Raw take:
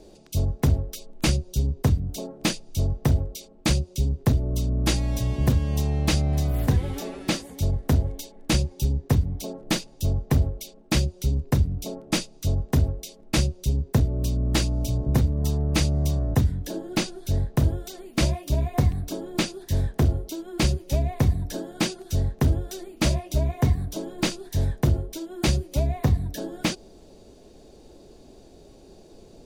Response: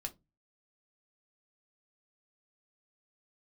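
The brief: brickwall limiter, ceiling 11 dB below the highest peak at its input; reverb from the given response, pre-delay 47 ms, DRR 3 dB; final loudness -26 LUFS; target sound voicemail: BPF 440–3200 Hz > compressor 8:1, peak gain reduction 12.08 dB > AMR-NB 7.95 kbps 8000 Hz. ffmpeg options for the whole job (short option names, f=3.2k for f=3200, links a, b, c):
-filter_complex "[0:a]alimiter=limit=-18.5dB:level=0:latency=1,asplit=2[a][b];[1:a]atrim=start_sample=2205,adelay=47[c];[b][c]afir=irnorm=-1:irlink=0,volume=-1.5dB[d];[a][d]amix=inputs=2:normalize=0,highpass=440,lowpass=3.2k,acompressor=threshold=-41dB:ratio=8,volume=22dB" -ar 8000 -c:a libopencore_amrnb -b:a 7950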